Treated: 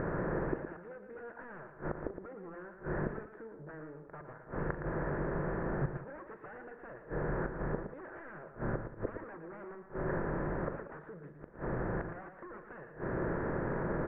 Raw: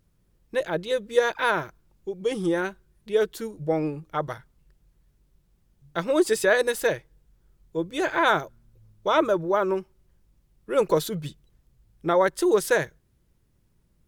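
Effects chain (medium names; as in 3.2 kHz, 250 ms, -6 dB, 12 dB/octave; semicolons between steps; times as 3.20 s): spectral levelling over time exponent 0.6; wavefolder -19 dBFS; compression 6:1, threshold -35 dBFS, peak gain reduction 12.5 dB; inverted gate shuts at -36 dBFS, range -25 dB; elliptic low-pass 1.8 kHz, stop band 60 dB; on a send: multi-tap echo 40/115/187 ms -14/-8/-16 dB; on the sum: trim +14 dB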